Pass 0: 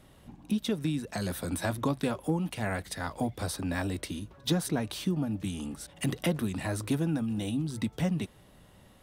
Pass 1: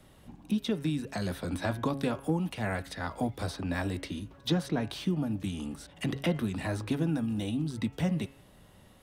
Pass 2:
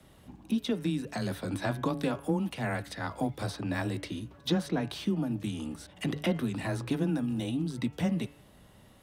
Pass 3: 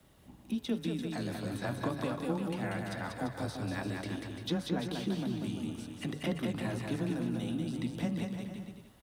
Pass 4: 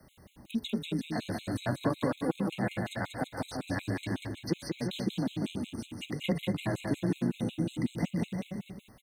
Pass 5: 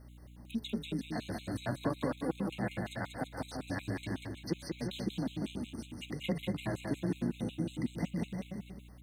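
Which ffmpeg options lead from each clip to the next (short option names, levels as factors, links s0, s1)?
-filter_complex "[0:a]bandreject=f=137.7:t=h:w=4,bandreject=f=275.4:t=h:w=4,bandreject=f=413.1:t=h:w=4,bandreject=f=550.8:t=h:w=4,bandreject=f=688.5:t=h:w=4,bandreject=f=826.2:t=h:w=4,bandreject=f=963.9:t=h:w=4,bandreject=f=1101.6:t=h:w=4,bandreject=f=1239.3:t=h:w=4,bandreject=f=1377:t=h:w=4,bandreject=f=1514.7:t=h:w=4,bandreject=f=1652.4:t=h:w=4,bandreject=f=1790.1:t=h:w=4,bandreject=f=1927.8:t=h:w=4,bandreject=f=2065.5:t=h:w=4,bandreject=f=2203.2:t=h:w=4,bandreject=f=2340.9:t=h:w=4,bandreject=f=2478.6:t=h:w=4,bandreject=f=2616.3:t=h:w=4,bandreject=f=2754:t=h:w=4,bandreject=f=2891.7:t=h:w=4,bandreject=f=3029.4:t=h:w=4,bandreject=f=3167.1:t=h:w=4,acrossover=split=100|720|5400[s0][s1][s2][s3];[s3]acompressor=threshold=0.00224:ratio=6[s4];[s0][s1][s2][s4]amix=inputs=4:normalize=0"
-af "afreqshift=14"
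-af "aecho=1:1:190|342|463.6|560.9|638.7:0.631|0.398|0.251|0.158|0.1,acrusher=bits=10:mix=0:aa=0.000001,volume=0.531"
-af "afftfilt=real='re*gt(sin(2*PI*5.4*pts/sr)*(1-2*mod(floor(b*sr/1024/2100),2)),0)':imag='im*gt(sin(2*PI*5.4*pts/sr)*(1-2*mod(floor(b*sr/1024/2100),2)),0)':win_size=1024:overlap=0.75,volume=1.88"
-af "aeval=exprs='val(0)+0.00398*(sin(2*PI*60*n/s)+sin(2*PI*2*60*n/s)/2+sin(2*PI*3*60*n/s)/3+sin(2*PI*4*60*n/s)/4+sin(2*PI*5*60*n/s)/5)':c=same,volume=0.631"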